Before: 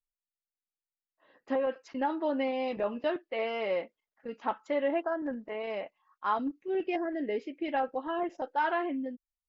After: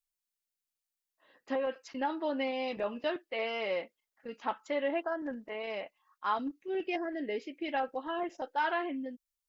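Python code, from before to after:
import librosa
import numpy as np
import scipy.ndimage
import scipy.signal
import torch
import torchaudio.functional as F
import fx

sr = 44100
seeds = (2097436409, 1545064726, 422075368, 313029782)

y = fx.high_shelf(x, sr, hz=2400.0, db=10.0)
y = y * 10.0 ** (-3.5 / 20.0)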